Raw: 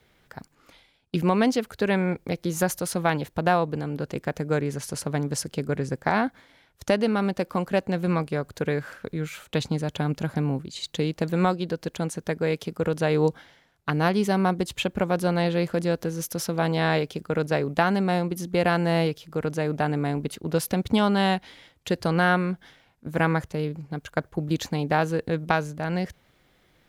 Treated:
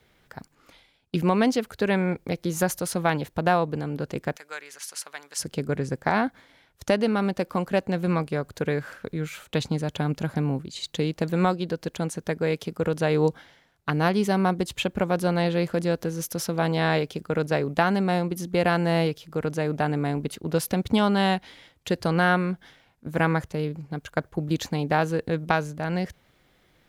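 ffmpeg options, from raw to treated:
ffmpeg -i in.wav -filter_complex "[0:a]asettb=1/sr,asplit=3[link_01][link_02][link_03];[link_01]atrim=end=4.364[link_04];[link_02]atrim=start=4.36:end=5.4,asetpts=PTS-STARTPTS,afade=type=in:duration=0.004:curve=qsin,afade=type=out:start_time=1.036:duration=0.004:curve=qsin,highpass=1400[link_05];[link_03]atrim=start=5.396[link_06];[link_04][link_05]acrossfade=duration=0.004:curve1=hsin:curve2=qsin[link_07];[link_07][link_06]acrossfade=duration=0.004:curve1=qsin:curve2=hsin" out.wav

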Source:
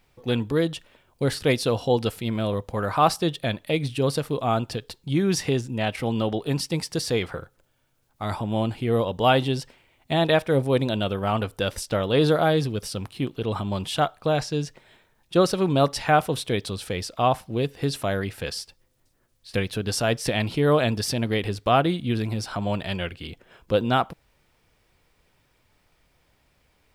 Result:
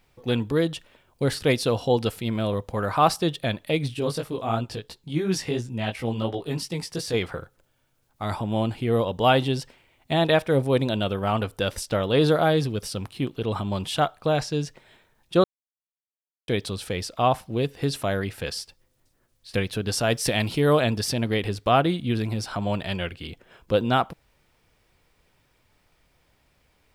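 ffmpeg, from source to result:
ffmpeg -i in.wav -filter_complex "[0:a]asettb=1/sr,asplit=3[link_01][link_02][link_03];[link_01]atrim=end=3.944[link_04];[link_02]atrim=start=3.94:end=7.14,asetpts=PTS-STARTPTS,afade=type=in:duration=0.004:curve=qsin,afade=type=out:start_time=3.196:duration=0.004:curve=qsin,flanger=delay=16:depth=3.5:speed=2.9[link_05];[link_03]atrim=start=7.136[link_06];[link_04][link_05]acrossfade=duration=0.004:curve1=hsin:curve2=qsin[link_07];[link_07][link_06]acrossfade=duration=0.004:curve1=qsin:curve2=hsin,asettb=1/sr,asplit=3[link_08][link_09][link_10];[link_08]atrim=end=20.104[link_11];[link_09]atrim=start=20.1:end=20.8,asetpts=PTS-STARTPTS,afade=type=in:duration=0.004:curve=qsin,afade=type=out:start_time=0.696:duration=0.004:curve=qsin,highshelf=frequency=4900:gain=7[link_12];[link_10]atrim=start=20.796[link_13];[link_11][link_12]acrossfade=duration=0.004:curve1=hsin:curve2=qsin[link_14];[link_14][link_13]acrossfade=duration=0.004:curve1=qsin:curve2=hsin,asplit=3[link_15][link_16][link_17];[link_15]atrim=end=15.44,asetpts=PTS-STARTPTS,afade=type=out:start_time=15.436:duration=0.004:curve=hsin[link_18];[link_16]atrim=start=15.44:end=16.48,asetpts=PTS-STARTPTS,volume=0[link_19];[link_17]atrim=start=16.48,asetpts=PTS-STARTPTS,afade=type=in:duration=0.004:curve=hsin[link_20];[link_18][link_19][link_20]concat=n=3:v=0:a=1" out.wav

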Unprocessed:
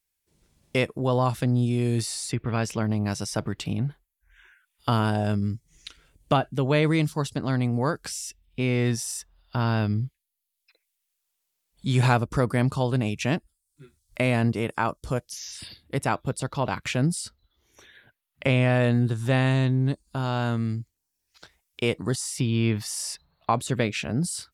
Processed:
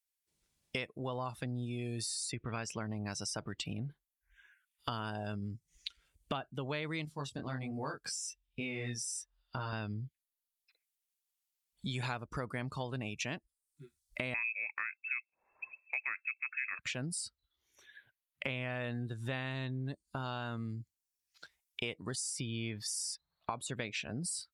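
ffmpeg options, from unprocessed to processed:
ffmpeg -i in.wav -filter_complex "[0:a]asettb=1/sr,asplit=3[link_01][link_02][link_03];[link_01]atrim=end=7.054[link_04];[link_02]atrim=start=7.05:end=9.73,asetpts=PTS-STARTPTS,afade=type=in:duration=0.004:curve=qsin,afade=type=out:start_time=2.676:duration=0.004:curve=qsin,flanger=delay=19.5:depth=5:speed=1.3[link_05];[link_03]atrim=start=9.726[link_06];[link_04][link_05]acrossfade=duration=0.004:curve1=hsin:curve2=qsin[link_07];[link_07][link_06]acrossfade=duration=0.004:curve1=qsin:curve2=hsin,asettb=1/sr,asplit=3[link_08][link_09][link_10];[link_08]atrim=end=14.344[link_11];[link_09]atrim=start=14.34:end=16.79,asetpts=PTS-STARTPTS,afade=type=in:duration=0.004:curve=qsin,afade=type=out:start_time=2.446:duration=0.004:curve=qsin,lowpass=frequency=2300:width_type=q:width=0.5098,lowpass=frequency=2300:width_type=q:width=0.6013,lowpass=frequency=2300:width_type=q:width=0.9,lowpass=frequency=2300:width_type=q:width=2.563,afreqshift=-2700[link_12];[link_10]atrim=start=16.786[link_13];[link_11][link_12]acrossfade=duration=0.004:curve1=hsin:curve2=qsin[link_14];[link_14][link_13]acrossfade=duration=0.004:curve1=qsin:curve2=hsin,asettb=1/sr,asplit=3[link_15][link_16][link_17];[link_15]atrim=end=22.314[link_18];[link_16]atrim=start=22.31:end=23.51,asetpts=PTS-STARTPTS,afade=type=in:duration=0.004:curve=qsin,afade=type=out:start_time=1.196:duration=0.004:curve=qsin,bandreject=frequency=2700:width=12[link_19];[link_17]atrim=start=23.506[link_20];[link_18][link_19]acrossfade=duration=0.004:curve1=hsin:curve2=qsin[link_21];[link_21][link_20]acrossfade=duration=0.004:curve1=qsin:curve2=hsin,afftdn=noise_reduction=15:noise_floor=-40,tiltshelf=frequency=970:gain=-5.5,acompressor=threshold=-39dB:ratio=4,volume=1dB" out.wav

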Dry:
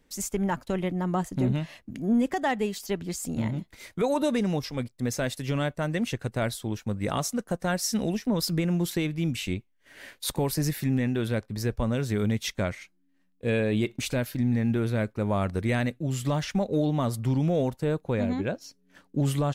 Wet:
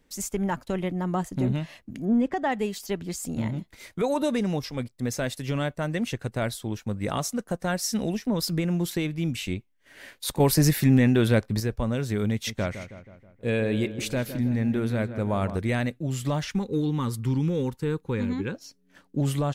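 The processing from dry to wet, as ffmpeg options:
ffmpeg -i in.wav -filter_complex "[0:a]asettb=1/sr,asplit=3[link_01][link_02][link_03];[link_01]atrim=end=2.054[link_04];[link_02]atrim=start=2.05:end=2.52,asetpts=PTS-STARTPTS,afade=type=in:duration=0.004:curve=qsin,afade=type=out:start_time=0.466:duration=0.004:curve=qsin,aemphasis=mode=reproduction:type=75fm[link_05];[link_03]atrim=start=2.516[link_06];[link_04][link_05]acrossfade=duration=0.004:curve1=hsin:curve2=qsin[link_07];[link_07][link_06]acrossfade=duration=0.004:curve1=qsin:curve2=hsin,asettb=1/sr,asplit=3[link_08][link_09][link_10];[link_08]atrim=end=12.314[link_11];[link_09]atrim=start=12.31:end=15.57,asetpts=PTS-STARTPTS,afade=type=in:duration=0.004:curve=qsin,afade=type=out:start_time=3.256:duration=0.004:curve=qsin,asplit=2[link_12][link_13];[link_13]adelay=160,lowpass=frequency=2400:poles=1,volume=-11dB,asplit=2[link_14][link_15];[link_15]adelay=160,lowpass=frequency=2400:poles=1,volume=0.55,asplit=2[link_16][link_17];[link_17]adelay=160,lowpass=frequency=2400:poles=1,volume=0.55,asplit=2[link_18][link_19];[link_19]adelay=160,lowpass=frequency=2400:poles=1,volume=0.55,asplit=2[link_20][link_21];[link_21]adelay=160,lowpass=frequency=2400:poles=1,volume=0.55,asplit=2[link_22][link_23];[link_23]adelay=160,lowpass=frequency=2400:poles=1,volume=0.55[link_24];[link_12][link_14][link_16][link_18][link_20][link_22][link_24]amix=inputs=7:normalize=0,atrim=end_sample=143766[link_25];[link_10]atrim=start=15.566[link_26];[link_11][link_25]acrossfade=duration=0.004:curve1=hsin:curve2=qsin[link_27];[link_27][link_26]acrossfade=duration=0.004:curve1=qsin:curve2=hsin,asettb=1/sr,asplit=3[link_28][link_29][link_30];[link_28]atrim=end=16.494[link_31];[link_29]atrim=start=16.49:end=18.55,asetpts=PTS-STARTPTS,afade=type=in:duration=0.004:curve=qsin,afade=type=out:start_time=2.056:duration=0.004:curve=qsin,asuperstop=centerf=650:order=4:qfactor=1.9[link_32];[link_30]atrim=start=18.546[link_33];[link_31][link_32]acrossfade=duration=0.004:curve1=hsin:curve2=qsin[link_34];[link_34][link_33]acrossfade=duration=0.004:curve1=qsin:curve2=hsin,asplit=3[link_35][link_36][link_37];[link_35]atrim=end=10.402[link_38];[link_36]atrim=start=10.398:end=11.602,asetpts=PTS-STARTPTS,volume=7dB[link_39];[link_37]atrim=start=11.598[link_40];[link_38][link_39]acrossfade=duration=0.004:curve1=hsin:curve2=hsin[link_41];[link_41][link_40]acrossfade=duration=0.004:curve1=hsin:curve2=hsin" out.wav

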